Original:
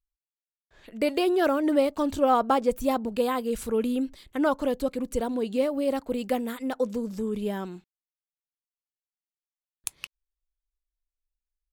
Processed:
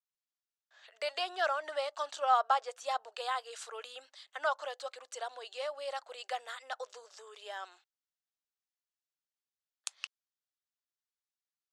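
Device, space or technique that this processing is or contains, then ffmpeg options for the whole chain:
phone speaker on a table: -af "highpass=f=720:w=0.5412,highpass=f=720:w=1.3066,highpass=f=400:w=0.5412,highpass=f=400:w=1.3066,equalizer=f=500:t=q:w=4:g=-4,equalizer=f=950:t=q:w=4:g=-7,equalizer=f=2300:t=q:w=4:g=-7,lowpass=f=7300:w=0.5412,lowpass=f=7300:w=1.3066,adynamicequalizer=threshold=0.01:dfrequency=2100:dqfactor=0.7:tfrequency=2100:tqfactor=0.7:attack=5:release=100:ratio=0.375:range=2:mode=cutabove:tftype=highshelf"

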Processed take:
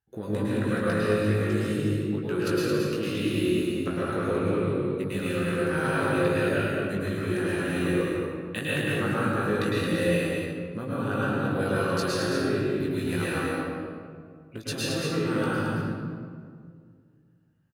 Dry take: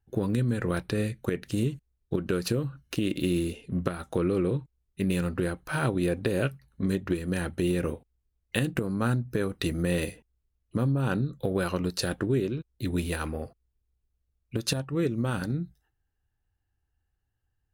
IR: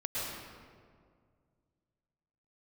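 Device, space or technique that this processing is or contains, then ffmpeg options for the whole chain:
stadium PA: -filter_complex "[0:a]highpass=f=150:p=1,equalizer=f=1600:t=o:w=1.4:g=4.5,aecho=1:1:163.3|221.6:0.355|0.562[s0];[1:a]atrim=start_sample=2205[s1];[s0][s1]afir=irnorm=-1:irlink=0,asplit=2[s2][s3];[s3]adelay=19,volume=0.596[s4];[s2][s4]amix=inputs=2:normalize=0,volume=0.562"

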